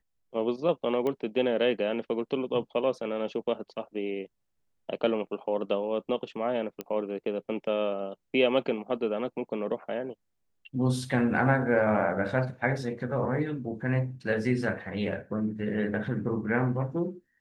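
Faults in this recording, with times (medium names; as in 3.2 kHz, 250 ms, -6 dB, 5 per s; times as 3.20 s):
1.07 s: pop -20 dBFS
6.81 s: pop -20 dBFS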